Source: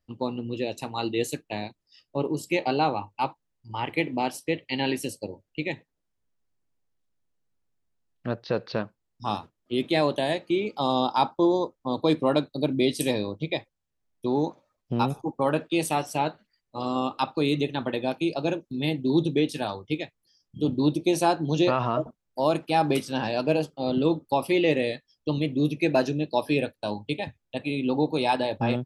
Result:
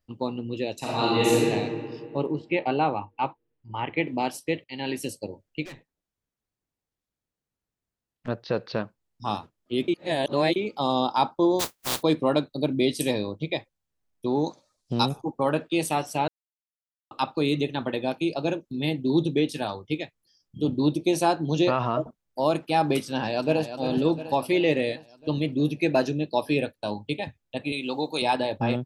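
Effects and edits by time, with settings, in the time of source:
0.78–1.45 reverb throw, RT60 2 s, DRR -8 dB
2.32–4.07 LPF 3200 Hz 24 dB/oct
4.64–5.07 fade in, from -13.5 dB
5.65–8.28 tube stage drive 39 dB, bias 0.5
9.88–10.56 reverse
11.59–12.01 spectral contrast lowered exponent 0.16
14.46–15.09 band shelf 6200 Hz +14.5 dB
16.28–17.11 mute
23.07–23.75 echo throw 0.35 s, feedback 60%, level -9.5 dB
27.72–28.22 tilt +3.5 dB/oct

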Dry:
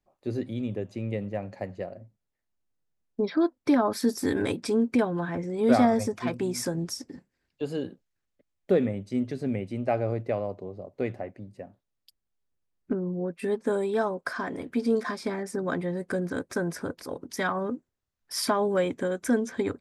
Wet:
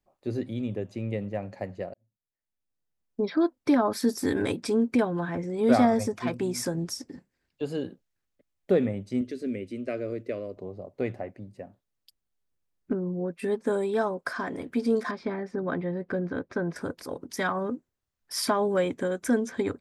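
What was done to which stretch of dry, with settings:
1.94–3.32 fade in
9.21–10.57 fixed phaser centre 340 Hz, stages 4
15.11–16.76 air absorption 240 m

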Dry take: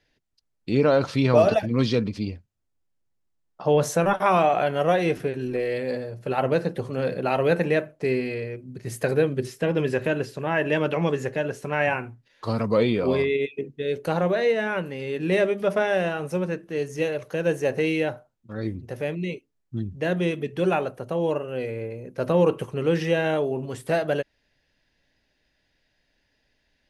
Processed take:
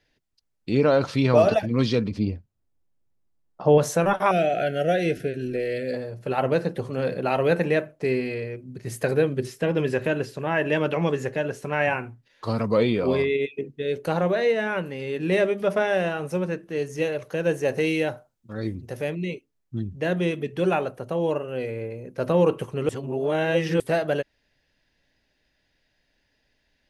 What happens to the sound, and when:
2.11–3.78 tilt shelf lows +4.5 dB, about 1200 Hz
4.31–5.94 elliptic band-stop 700–1400 Hz
17.68–19.1 tone controls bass 0 dB, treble +5 dB
22.89–23.8 reverse

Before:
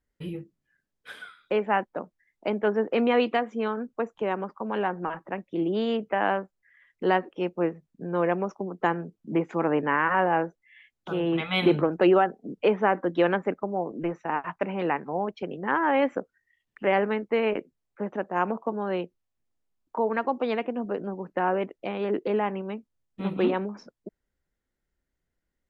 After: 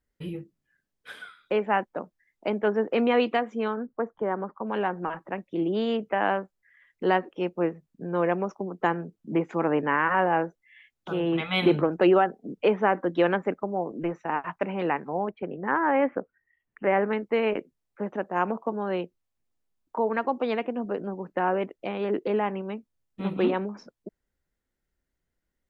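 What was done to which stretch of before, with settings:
3.75–4.67 polynomial smoothing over 41 samples
15.29–17.13 LPF 2300 Hz 24 dB/oct

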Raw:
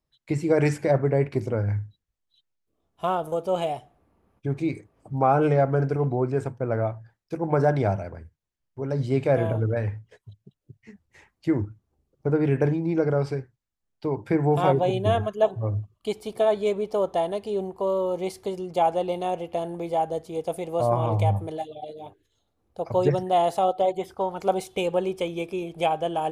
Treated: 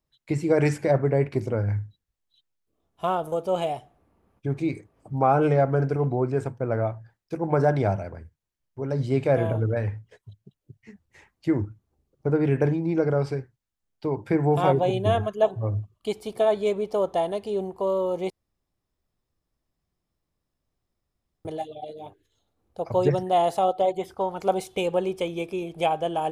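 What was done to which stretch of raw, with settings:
18.3–21.45 room tone

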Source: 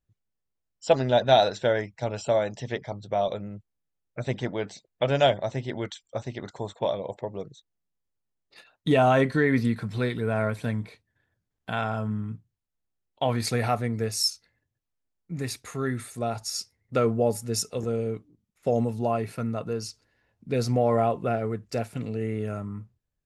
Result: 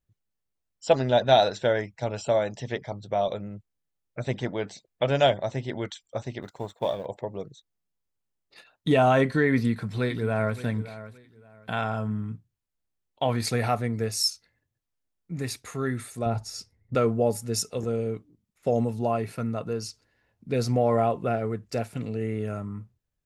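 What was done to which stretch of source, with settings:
6.42–7.06 G.711 law mismatch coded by A
9.53–10.6 echo throw 0.57 s, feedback 25%, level -15 dB
16.26–16.95 tilt -2.5 dB/oct

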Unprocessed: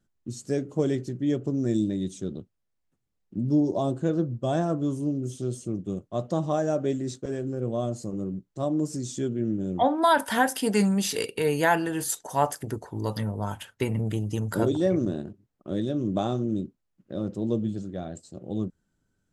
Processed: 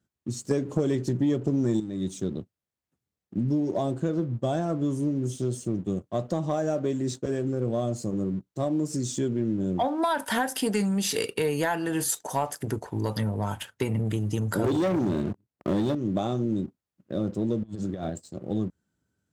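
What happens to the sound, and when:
0.51–1.8 gain +12 dB
14.64–15.95 sample leveller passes 3
17.63–18.1 negative-ratio compressor -36 dBFS, ratio -0.5
whole clip: HPF 55 Hz 24 dB/oct; compressor, threshold -26 dBFS; sample leveller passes 1

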